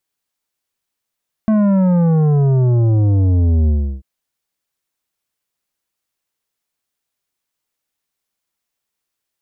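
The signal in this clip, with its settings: sub drop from 220 Hz, over 2.54 s, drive 10 dB, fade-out 0.34 s, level -11.5 dB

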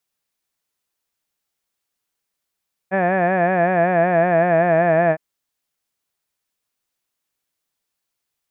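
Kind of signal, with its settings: formant-synthesis vowel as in had, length 2.26 s, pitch 185 Hz, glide -2 st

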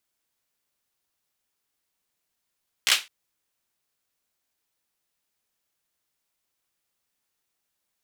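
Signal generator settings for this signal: hand clap length 0.21 s, apart 15 ms, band 2.8 kHz, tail 0.23 s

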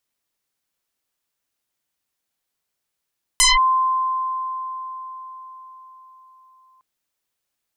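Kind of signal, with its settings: FM tone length 3.41 s, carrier 1.04 kHz, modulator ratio 0.98, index 9.6, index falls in 0.18 s linear, decay 4.80 s, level -10.5 dB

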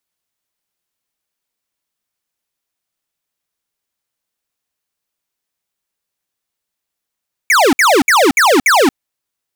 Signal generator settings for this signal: burst of laser zaps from 2.4 kHz, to 240 Hz, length 0.23 s square, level -9.5 dB, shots 5, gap 0.06 s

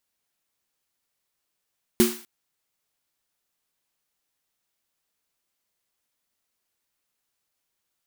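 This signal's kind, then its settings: snare drum length 0.25 s, tones 230 Hz, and 360 Hz, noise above 780 Hz, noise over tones -7.5 dB, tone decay 0.30 s, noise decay 0.49 s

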